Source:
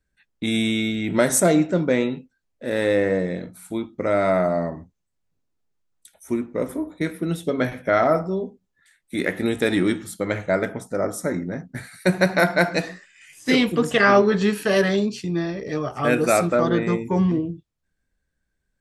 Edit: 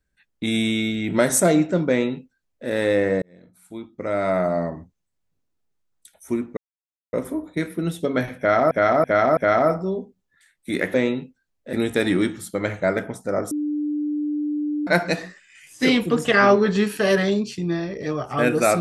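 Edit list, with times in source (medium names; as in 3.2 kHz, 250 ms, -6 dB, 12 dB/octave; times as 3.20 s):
1.89–2.68 s: copy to 9.39 s
3.22–4.60 s: fade in
6.57 s: insert silence 0.56 s
7.82–8.15 s: loop, 4 plays
11.17–12.53 s: bleep 297 Hz -21.5 dBFS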